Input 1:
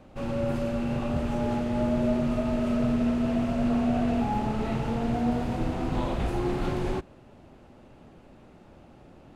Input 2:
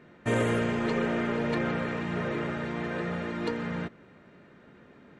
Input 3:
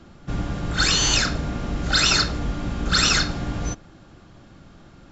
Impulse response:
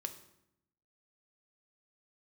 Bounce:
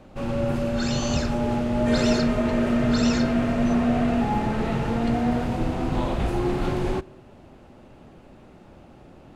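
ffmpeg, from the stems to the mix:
-filter_complex "[0:a]volume=2dB,asplit=2[link_01][link_02];[link_02]volume=-12.5dB[link_03];[1:a]adelay=1600,volume=-2dB[link_04];[2:a]volume=-13.5dB[link_05];[3:a]atrim=start_sample=2205[link_06];[link_03][link_06]afir=irnorm=-1:irlink=0[link_07];[link_01][link_04][link_05][link_07]amix=inputs=4:normalize=0"

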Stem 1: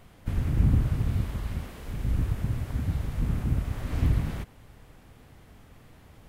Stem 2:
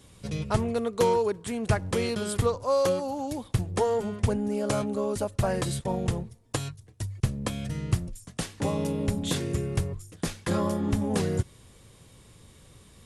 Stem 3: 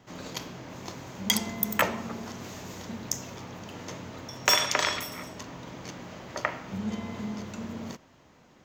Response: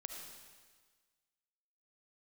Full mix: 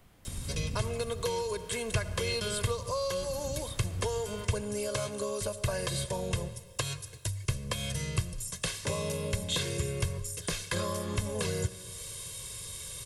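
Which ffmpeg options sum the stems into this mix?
-filter_complex "[0:a]volume=-7dB[link_01];[1:a]acrossover=split=3600[link_02][link_03];[link_03]acompressor=threshold=-49dB:ratio=4:attack=1:release=60[link_04];[link_02][link_04]amix=inputs=2:normalize=0,highshelf=frequency=2000:gain=12,aecho=1:1:1.9:0.75,adelay=250,volume=0dB,asplit=2[link_05][link_06];[link_06]volume=-14.5dB[link_07];[link_01][link_05]amix=inputs=2:normalize=0,acompressor=threshold=-38dB:ratio=2,volume=0dB[link_08];[3:a]atrim=start_sample=2205[link_09];[link_07][link_09]afir=irnorm=-1:irlink=0[link_10];[link_08][link_10]amix=inputs=2:normalize=0,highshelf=frequency=4400:gain=6,acrossover=split=190|3000[link_11][link_12][link_13];[link_12]acompressor=threshold=-32dB:ratio=3[link_14];[link_11][link_14][link_13]amix=inputs=3:normalize=0"

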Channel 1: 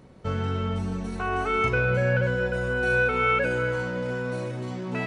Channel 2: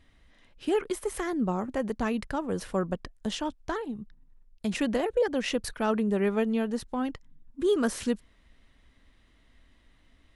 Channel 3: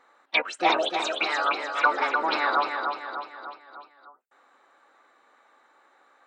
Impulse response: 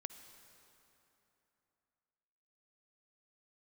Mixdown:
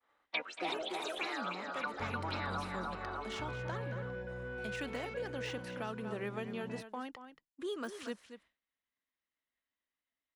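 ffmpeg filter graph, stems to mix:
-filter_complex "[0:a]asoftclip=type=tanh:threshold=-19.5dB,bandreject=frequency=1300:width=7.5,adelay=1750,volume=-14dB[link_01];[1:a]deesser=0.95,highpass=frequency=1300:poles=1,volume=-0.5dB,asplit=2[link_02][link_03];[link_03]volume=-12dB[link_04];[2:a]volume=-5.5dB,asplit=2[link_05][link_06];[link_06]volume=-16.5dB[link_07];[link_04][link_07]amix=inputs=2:normalize=0,aecho=0:1:230:1[link_08];[link_01][link_02][link_05][link_08]amix=inputs=4:normalize=0,agate=range=-33dB:threshold=-57dB:ratio=3:detection=peak,highshelf=frequency=3800:gain=-11,acrossover=split=250|3000[link_09][link_10][link_11];[link_10]acompressor=threshold=-38dB:ratio=6[link_12];[link_09][link_12][link_11]amix=inputs=3:normalize=0"

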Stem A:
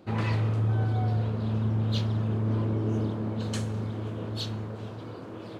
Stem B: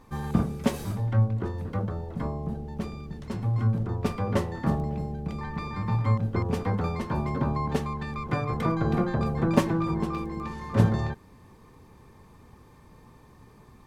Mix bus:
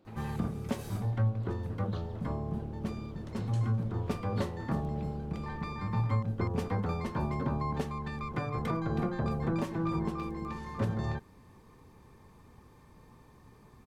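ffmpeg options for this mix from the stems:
ffmpeg -i stem1.wav -i stem2.wav -filter_complex "[0:a]alimiter=level_in=1dB:limit=-24dB:level=0:latency=1:release=238,volume=-1dB,volume=-11.5dB[link_01];[1:a]adelay=50,volume=-4dB[link_02];[link_01][link_02]amix=inputs=2:normalize=0,alimiter=limit=-20.5dB:level=0:latency=1:release=247" out.wav

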